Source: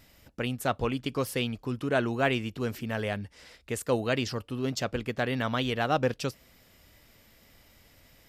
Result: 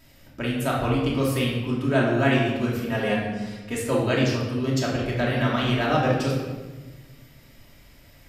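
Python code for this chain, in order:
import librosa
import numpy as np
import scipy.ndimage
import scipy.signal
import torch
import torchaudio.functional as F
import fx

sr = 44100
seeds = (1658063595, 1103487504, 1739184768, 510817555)

y = fx.comb(x, sr, ms=4.2, depth=0.69, at=(2.89, 3.75))
y = fx.room_shoebox(y, sr, seeds[0], volume_m3=910.0, walls='mixed', distance_m=2.8)
y = F.gain(torch.from_numpy(y), -1.0).numpy()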